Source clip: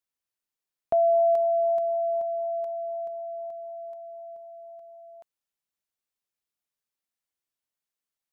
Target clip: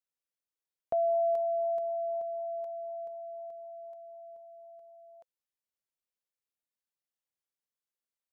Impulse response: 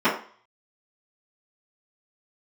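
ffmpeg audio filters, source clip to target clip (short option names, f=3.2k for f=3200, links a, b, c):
-af "equalizer=f=520:w=6.2:g=7,volume=-7.5dB"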